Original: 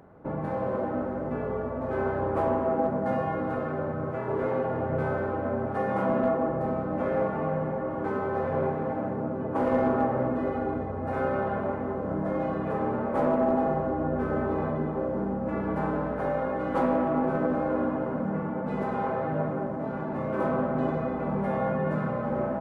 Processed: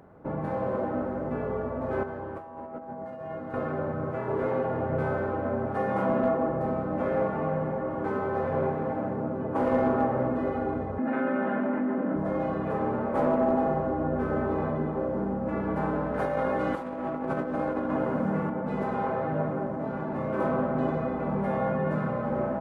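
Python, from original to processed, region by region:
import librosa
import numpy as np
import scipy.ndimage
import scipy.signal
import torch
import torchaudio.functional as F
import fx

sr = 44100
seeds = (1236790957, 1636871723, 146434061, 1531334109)

y = fx.chain(x, sr, fx.comb_fb(f0_hz=81.0, decay_s=0.73, harmonics='all', damping=0.0, mix_pct=80),
    fx.over_compress(threshold_db=-37.0, ratio=-0.5), at=(2.03, 3.54))
y = fx.chain(y, sr, fx.cabinet(low_hz=210.0, low_slope=24, high_hz=3200.0, hz=(250.0, 440.0, 740.0, 1100.0, 1700.0), db=(9, -9, -6, -5, 3)),
    fx.env_flatten(amount_pct=70), at=(10.98, 12.16))
y = fx.chain(y, sr, fx.highpass(hz=46.0, slope=12),
    fx.high_shelf(hz=2700.0, db=8.0),
    fx.over_compress(threshold_db=-28.0, ratio=-0.5), at=(16.14, 18.5))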